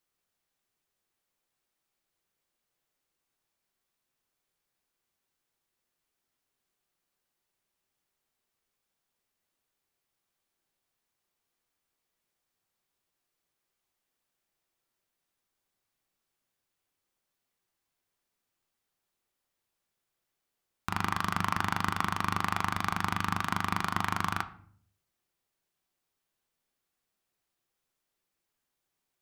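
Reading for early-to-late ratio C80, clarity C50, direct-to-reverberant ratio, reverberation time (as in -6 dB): 18.5 dB, 15.5 dB, 9.0 dB, 0.55 s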